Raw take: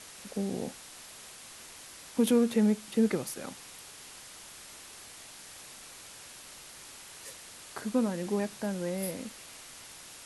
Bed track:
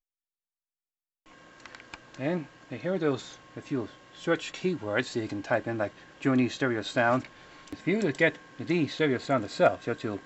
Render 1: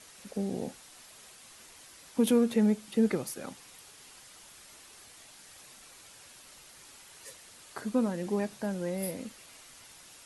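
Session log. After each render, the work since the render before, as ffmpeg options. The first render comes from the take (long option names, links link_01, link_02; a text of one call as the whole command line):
ffmpeg -i in.wav -af "afftdn=noise_reduction=6:noise_floor=-49" out.wav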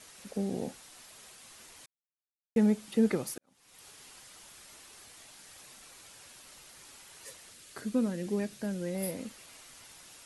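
ffmpeg -i in.wav -filter_complex "[0:a]asettb=1/sr,asplit=3[link_01][link_02][link_03];[link_01]atrim=end=7.534[link_04];[link_02]atrim=start=7.53:end=8.95,asetpts=PTS-STARTPTS,afade=type=in:duration=0.004:curve=qsin,afade=type=out:start_time=1.416:duration=0.004:curve=qsin,equalizer=frequency=890:width=1.3:gain=-9.5[link_05];[link_03]atrim=start=8.946[link_06];[link_04][link_05]acrossfade=duration=0.004:curve1=hsin:curve2=qsin[link_07];[link_07][link_06]acrossfade=duration=0.004:curve1=qsin:curve2=hsin,asplit=4[link_08][link_09][link_10][link_11];[link_08]atrim=end=1.86,asetpts=PTS-STARTPTS,afade=type=out:start_time=1.856:duration=0.004:curve=hsin[link_12];[link_09]atrim=start=1.86:end=2.56,asetpts=PTS-STARTPTS,volume=0[link_13];[link_10]atrim=start=2.56:end=3.38,asetpts=PTS-STARTPTS,afade=type=in:duration=0.004:curve=hsin,afade=type=out:start_time=0.816:duration=0.004:curve=hsin[link_14];[link_11]atrim=start=3.38,asetpts=PTS-STARTPTS,afade=type=in:duration=0.48:curve=qua[link_15];[link_12][link_13][link_14][link_15]concat=n=4:v=0:a=1" out.wav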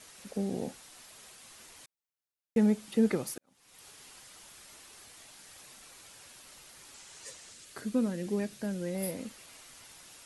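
ffmpeg -i in.wav -filter_complex "[0:a]asettb=1/sr,asplit=3[link_01][link_02][link_03];[link_01]atrim=end=6.944[link_04];[link_02]atrim=start=6.94:end=7.65,asetpts=PTS-STARTPTS,afade=type=in:duration=0.004:curve=qsin,afade=type=out:start_time=0.706:duration=0.004:curve=qsin,lowpass=frequency=7500:width_type=q:width=1.6[link_05];[link_03]atrim=start=7.646[link_06];[link_04][link_05]acrossfade=duration=0.004:curve1=hsin:curve2=qsin[link_07];[link_07][link_06]acrossfade=duration=0.004:curve1=qsin:curve2=hsin" out.wav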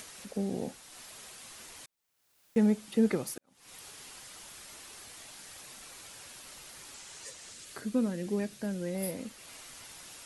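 ffmpeg -i in.wav -af "acompressor=mode=upward:threshold=-42dB:ratio=2.5" out.wav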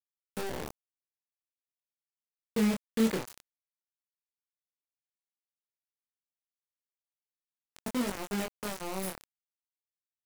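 ffmpeg -i in.wav -af "acrusher=bits=4:mix=0:aa=0.000001,flanger=delay=20:depth=6.9:speed=0.49" out.wav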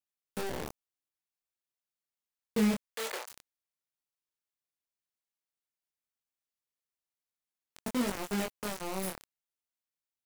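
ffmpeg -i in.wav -filter_complex "[0:a]asplit=3[link_01][link_02][link_03];[link_01]afade=type=out:start_time=2.85:duration=0.02[link_04];[link_02]highpass=frequency=550:width=0.5412,highpass=frequency=550:width=1.3066,afade=type=in:start_time=2.85:duration=0.02,afade=type=out:start_time=3.3:duration=0.02[link_05];[link_03]afade=type=in:start_time=3.3:duration=0.02[link_06];[link_04][link_05][link_06]amix=inputs=3:normalize=0,asettb=1/sr,asplit=3[link_07][link_08][link_09];[link_07]atrim=end=7.994[link_10];[link_08]atrim=start=7.99:end=8.5,asetpts=PTS-STARTPTS,afade=type=in:duration=0.004:curve=qsin,afade=type=out:start_time=0.506:duration=0.004:curve=qsin,aeval=exprs='val(0)+0.5*0.00596*sgn(val(0))':channel_layout=same[link_11];[link_09]atrim=start=8.496[link_12];[link_10][link_11]acrossfade=duration=0.004:curve1=hsin:curve2=qsin[link_13];[link_13][link_12]acrossfade=duration=0.004:curve1=qsin:curve2=hsin" out.wav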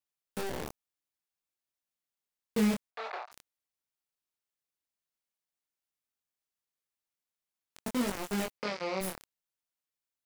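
ffmpeg -i in.wav -filter_complex "[0:a]asplit=3[link_01][link_02][link_03];[link_01]afade=type=out:start_time=2.9:duration=0.02[link_04];[link_02]highpass=440,equalizer=frequency=500:width_type=q:width=4:gain=-7,equalizer=frequency=720:width_type=q:width=4:gain=10,equalizer=frequency=1200:width_type=q:width=4:gain=4,equalizer=frequency=1900:width_type=q:width=4:gain=-4,equalizer=frequency=3100:width_type=q:width=4:gain=-10,lowpass=frequency=3600:width=0.5412,lowpass=frequency=3600:width=1.3066,afade=type=in:start_time=2.9:duration=0.02,afade=type=out:start_time=3.31:duration=0.02[link_05];[link_03]afade=type=in:start_time=3.31:duration=0.02[link_06];[link_04][link_05][link_06]amix=inputs=3:normalize=0,asettb=1/sr,asplit=3[link_07][link_08][link_09];[link_07]atrim=end=8.584[link_10];[link_08]atrim=start=8.58:end=9.01,asetpts=PTS-STARTPTS,afade=type=in:duration=0.004:curve=qsin,afade=type=out:start_time=0.426:duration=0.004:curve=qsin,highpass=140,equalizer=frequency=520:width_type=q:width=4:gain=9,equalizer=frequency=1200:width_type=q:width=4:gain=3,equalizer=frequency=2200:width_type=q:width=4:gain=9,equalizer=frequency=4800:width_type=q:width=4:gain=8,lowpass=frequency=5200:width=0.5412,lowpass=frequency=5200:width=1.3066[link_11];[link_09]atrim=start=9.006[link_12];[link_10][link_11]acrossfade=duration=0.004:curve1=hsin:curve2=qsin[link_13];[link_13][link_12]acrossfade=duration=0.004:curve1=qsin:curve2=hsin" out.wav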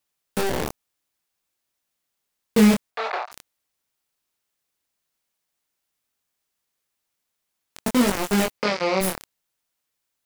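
ffmpeg -i in.wav -af "volume=12dB" out.wav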